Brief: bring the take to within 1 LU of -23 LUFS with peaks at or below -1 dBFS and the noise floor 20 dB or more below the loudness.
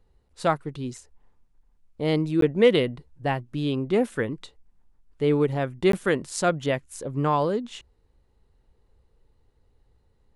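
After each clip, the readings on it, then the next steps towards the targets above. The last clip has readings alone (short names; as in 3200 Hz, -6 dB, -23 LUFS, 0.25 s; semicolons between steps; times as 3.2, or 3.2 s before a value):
dropouts 2; longest dropout 13 ms; loudness -25.0 LUFS; peak -6.5 dBFS; loudness target -23.0 LUFS
-> interpolate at 2.41/5.92, 13 ms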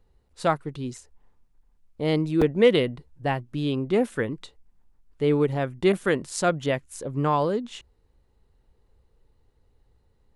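dropouts 0; loudness -25.0 LUFS; peak -6.5 dBFS; loudness target -23.0 LUFS
-> gain +2 dB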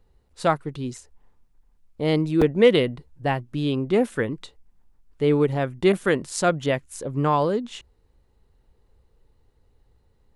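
loudness -23.0 LUFS; peak -4.5 dBFS; noise floor -63 dBFS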